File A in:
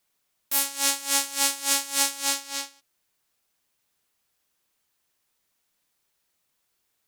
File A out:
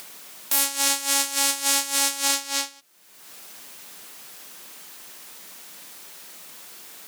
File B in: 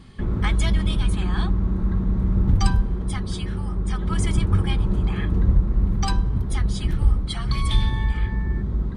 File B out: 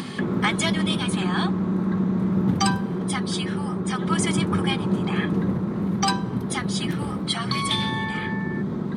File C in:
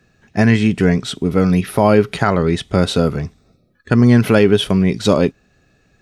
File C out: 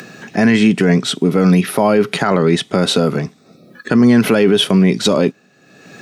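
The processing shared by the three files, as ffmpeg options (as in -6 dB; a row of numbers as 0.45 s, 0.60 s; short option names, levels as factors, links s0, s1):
-af "highpass=f=160:w=0.5412,highpass=f=160:w=1.3066,acompressor=mode=upward:threshold=0.0398:ratio=2.5,alimiter=limit=0.335:level=0:latency=1:release=21,volume=2"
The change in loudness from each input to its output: +3.0 LU, -0.5 LU, +1.5 LU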